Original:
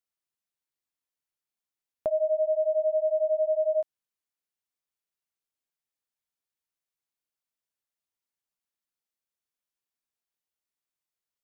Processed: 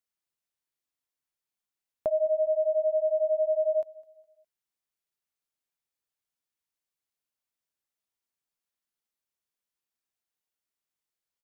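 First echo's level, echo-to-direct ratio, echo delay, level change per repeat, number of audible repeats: -21.0 dB, -20.5 dB, 0.206 s, -8.5 dB, 2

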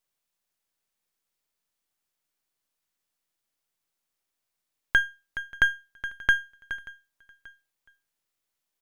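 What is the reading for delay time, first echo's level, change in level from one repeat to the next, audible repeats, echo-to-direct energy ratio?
0.583 s, -23.0 dB, -4.5 dB, 2, -21.5 dB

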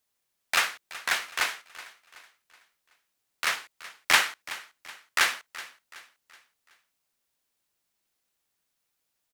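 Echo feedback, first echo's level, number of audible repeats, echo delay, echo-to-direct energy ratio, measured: 42%, -17.0 dB, 3, 0.375 s, -16.0 dB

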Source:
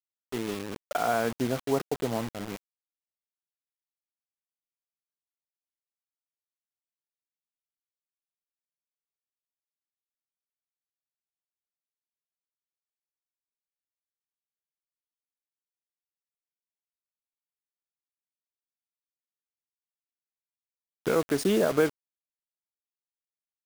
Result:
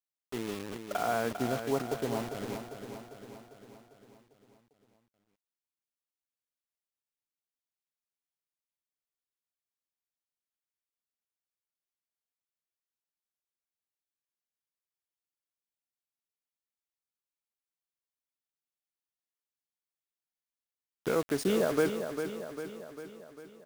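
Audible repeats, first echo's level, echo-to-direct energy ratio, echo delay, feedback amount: 6, -8.0 dB, -6.5 dB, 0.399 s, 57%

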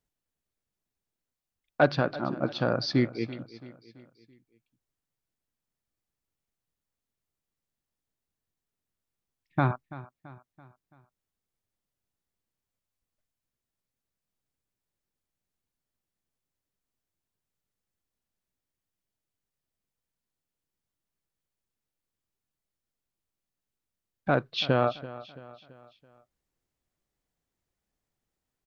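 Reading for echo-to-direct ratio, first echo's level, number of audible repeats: -16.0 dB, -17.0 dB, 3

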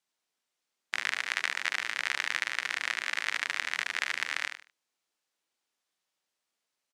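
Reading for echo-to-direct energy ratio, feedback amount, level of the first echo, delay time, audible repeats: -8.0 dB, 26%, -8.5 dB, 74 ms, 3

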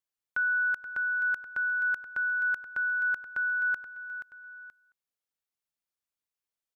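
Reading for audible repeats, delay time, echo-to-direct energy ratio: 2, 0.478 s, -10.0 dB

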